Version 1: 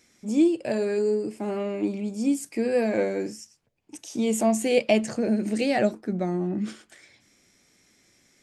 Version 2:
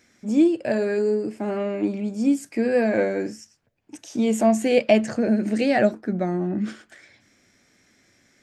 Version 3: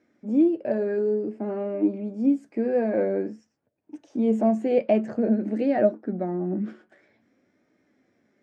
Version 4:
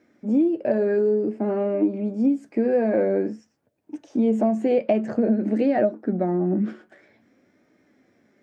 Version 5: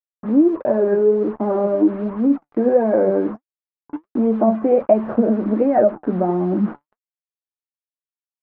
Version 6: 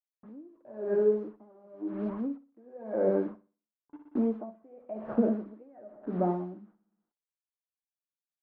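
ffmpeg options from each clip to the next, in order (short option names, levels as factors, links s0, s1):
-af "equalizer=f=100:t=o:w=0.67:g=5,equalizer=f=250:t=o:w=0.67:g=4,equalizer=f=630:t=o:w=0.67:g=4,equalizer=f=1600:t=o:w=0.67:g=7,equalizer=f=10000:t=o:w=0.67:g=-6"
-af "bandpass=f=380:t=q:w=0.71:csg=0,flanger=delay=3.2:depth=2.3:regen=71:speed=0.52:shape=sinusoidal,volume=1.5"
-af "acompressor=threshold=0.0794:ratio=6,volume=1.88"
-af "acrusher=bits=5:mix=0:aa=0.5,lowpass=f=1100:t=q:w=2.1,flanger=delay=0.9:depth=6.1:regen=68:speed=1.4:shape=sinusoidal,volume=2.37"
-filter_complex "[0:a]asplit=2[s0][s1];[s1]aecho=0:1:61|122|183|244|305|366:0.251|0.138|0.076|0.0418|0.023|0.0126[s2];[s0][s2]amix=inputs=2:normalize=0,aeval=exprs='val(0)*pow(10,-30*(0.5-0.5*cos(2*PI*0.96*n/s))/20)':c=same,volume=0.376"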